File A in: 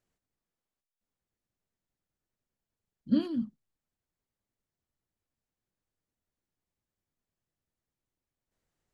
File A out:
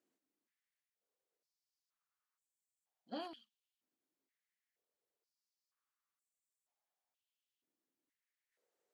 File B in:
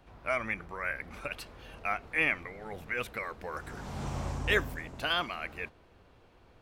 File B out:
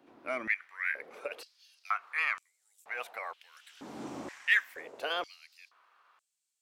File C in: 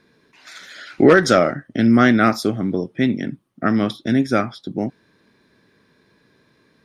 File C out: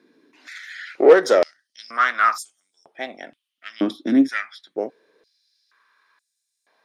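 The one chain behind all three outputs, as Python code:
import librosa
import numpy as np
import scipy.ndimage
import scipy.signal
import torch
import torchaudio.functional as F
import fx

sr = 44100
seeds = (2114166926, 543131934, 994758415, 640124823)

y = fx.diode_clip(x, sr, knee_db=-12.5)
y = fx.filter_held_highpass(y, sr, hz=2.1, low_hz=290.0, high_hz=7700.0)
y = y * 10.0 ** (-5.0 / 20.0)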